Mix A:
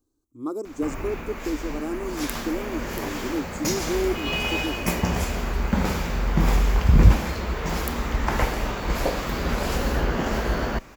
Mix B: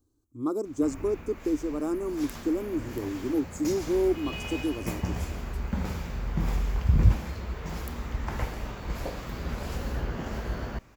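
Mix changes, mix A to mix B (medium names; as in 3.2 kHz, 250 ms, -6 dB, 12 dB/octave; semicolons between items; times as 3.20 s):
background -11.5 dB; master: add peaking EQ 91 Hz +8.5 dB 1.7 oct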